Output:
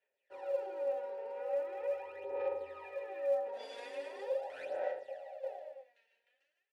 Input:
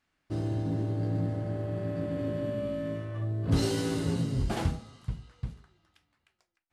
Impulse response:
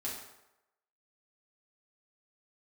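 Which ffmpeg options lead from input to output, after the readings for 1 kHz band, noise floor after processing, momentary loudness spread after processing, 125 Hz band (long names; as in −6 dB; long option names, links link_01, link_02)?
−1.0 dB, −85 dBFS, 10 LU, below −40 dB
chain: -filter_complex "[1:a]atrim=start_sample=2205,afade=type=out:start_time=0.3:duration=0.01,atrim=end_sample=13671[link_01];[0:a][link_01]afir=irnorm=-1:irlink=0,aeval=exprs='val(0)*sin(2*PI*670*n/s)':channel_layout=same,equalizer=frequency=160:width_type=o:width=0.67:gain=-11,equalizer=frequency=1000:width_type=o:width=0.67:gain=9,equalizer=frequency=10000:width_type=o:width=0.67:gain=6,alimiter=level_in=2.5dB:limit=-24dB:level=0:latency=1:release=18,volume=-2.5dB,asplit=3[link_02][link_03][link_04];[link_02]bandpass=frequency=530:width_type=q:width=8,volume=0dB[link_05];[link_03]bandpass=frequency=1840:width_type=q:width=8,volume=-6dB[link_06];[link_04]bandpass=frequency=2480:width_type=q:width=8,volume=-9dB[link_07];[link_05][link_06][link_07]amix=inputs=3:normalize=0,aecho=1:1:110.8|151.6:0.316|0.447,aphaser=in_gain=1:out_gain=1:delay=4.4:decay=0.66:speed=0.41:type=sinusoidal,tiltshelf=frequency=790:gain=-4.5,dynaudnorm=framelen=160:gausssize=3:maxgain=3dB"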